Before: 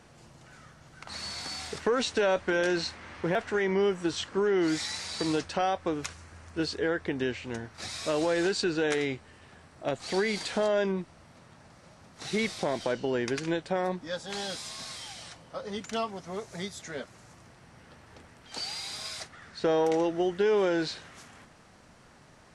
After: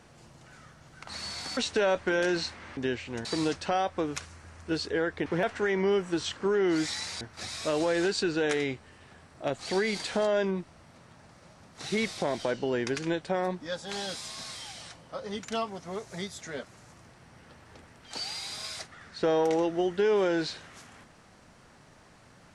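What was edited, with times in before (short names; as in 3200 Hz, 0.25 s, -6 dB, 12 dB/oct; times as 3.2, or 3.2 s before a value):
1.57–1.98 cut
3.18–5.13 swap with 7.14–7.62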